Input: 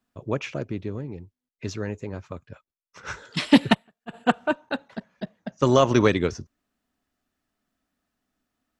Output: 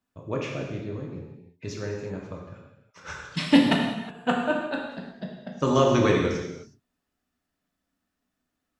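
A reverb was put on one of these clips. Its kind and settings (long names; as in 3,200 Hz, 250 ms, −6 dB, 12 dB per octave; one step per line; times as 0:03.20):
reverb whose tail is shaped and stops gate 390 ms falling, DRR −1 dB
level −5 dB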